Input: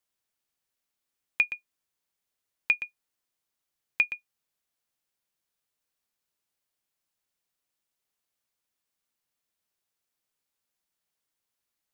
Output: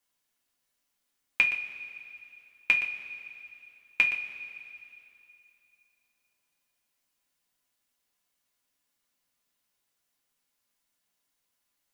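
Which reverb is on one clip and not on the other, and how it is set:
coupled-rooms reverb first 0.24 s, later 2.8 s, from −18 dB, DRR −1.5 dB
level +1.5 dB

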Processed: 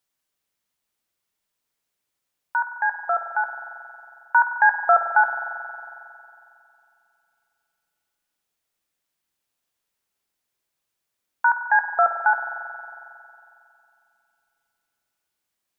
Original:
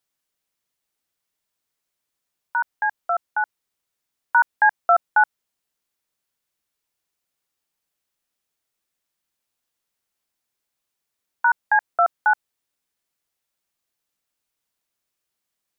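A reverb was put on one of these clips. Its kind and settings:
spring reverb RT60 2.7 s, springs 45 ms, chirp 80 ms, DRR 5.5 dB

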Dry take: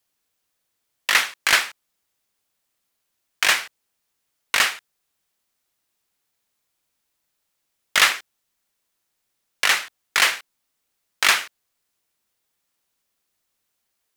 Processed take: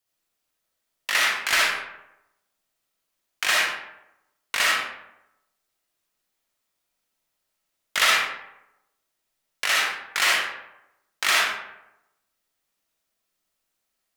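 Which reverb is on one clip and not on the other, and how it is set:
comb and all-pass reverb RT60 0.89 s, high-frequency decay 0.55×, pre-delay 20 ms, DRR −4.5 dB
level −7 dB

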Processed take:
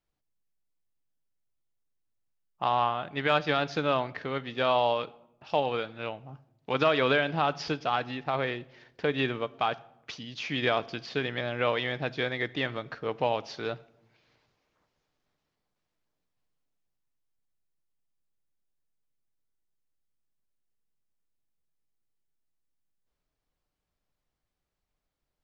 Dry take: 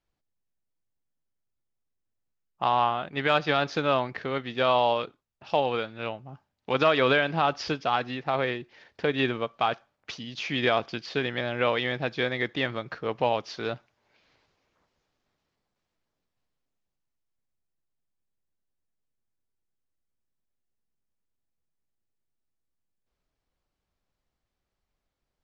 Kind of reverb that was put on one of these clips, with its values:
rectangular room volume 3,000 cubic metres, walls furnished, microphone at 0.44 metres
level −2.5 dB

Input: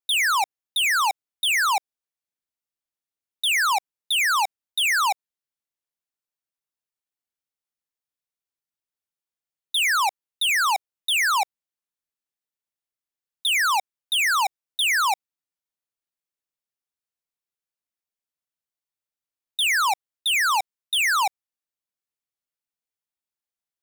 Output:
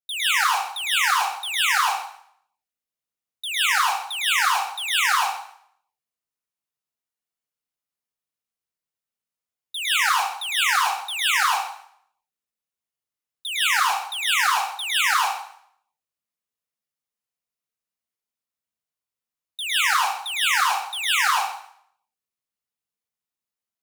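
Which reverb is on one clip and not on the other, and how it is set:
dense smooth reverb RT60 0.65 s, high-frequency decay 0.9×, pre-delay 100 ms, DRR −8.5 dB
level −8 dB

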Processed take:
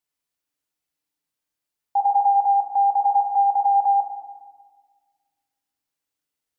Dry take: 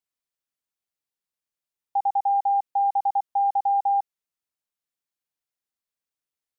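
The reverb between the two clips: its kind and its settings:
feedback delay network reverb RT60 1.5 s, low-frequency decay 1.55×, high-frequency decay 0.95×, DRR 3 dB
level +3.5 dB

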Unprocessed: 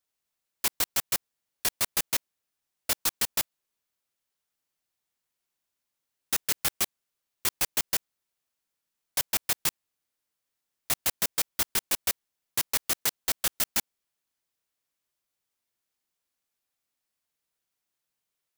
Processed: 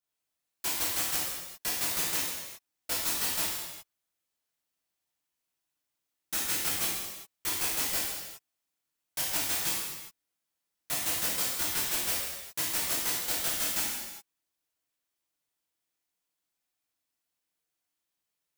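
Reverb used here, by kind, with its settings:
reverb whose tail is shaped and stops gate 430 ms falling, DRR −7.5 dB
level −9 dB

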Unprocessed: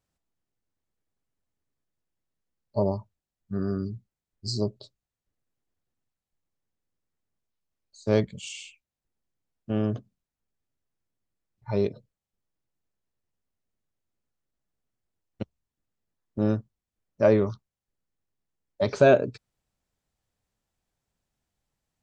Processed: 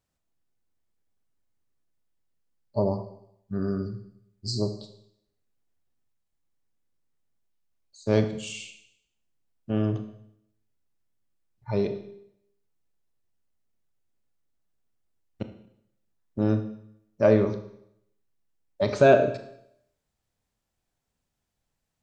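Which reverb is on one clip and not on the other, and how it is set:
four-comb reverb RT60 0.73 s, combs from 25 ms, DRR 7.5 dB

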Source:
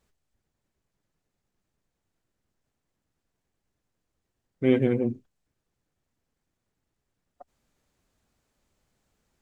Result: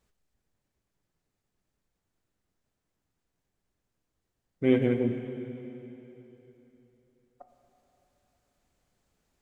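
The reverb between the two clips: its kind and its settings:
dense smooth reverb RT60 3.4 s, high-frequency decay 0.95×, DRR 6.5 dB
level −2 dB

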